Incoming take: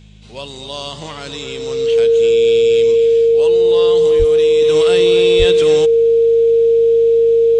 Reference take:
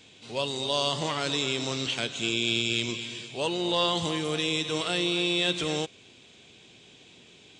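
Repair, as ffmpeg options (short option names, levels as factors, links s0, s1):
-filter_complex "[0:a]bandreject=f=52:t=h:w=4,bandreject=f=104:t=h:w=4,bandreject=f=156:t=h:w=4,bandreject=f=208:t=h:w=4,bandreject=f=460:w=30,asplit=3[s0][s1][s2];[s0]afade=t=out:st=4.18:d=0.02[s3];[s1]highpass=f=140:w=0.5412,highpass=f=140:w=1.3066,afade=t=in:st=4.18:d=0.02,afade=t=out:st=4.3:d=0.02[s4];[s2]afade=t=in:st=4.3:d=0.02[s5];[s3][s4][s5]amix=inputs=3:normalize=0,asplit=3[s6][s7][s8];[s6]afade=t=out:st=5.38:d=0.02[s9];[s7]highpass=f=140:w=0.5412,highpass=f=140:w=1.3066,afade=t=in:st=5.38:d=0.02,afade=t=out:st=5.5:d=0.02[s10];[s8]afade=t=in:st=5.5:d=0.02[s11];[s9][s10][s11]amix=inputs=3:normalize=0,asetnsamples=n=441:p=0,asendcmd='4.62 volume volume -6.5dB',volume=1"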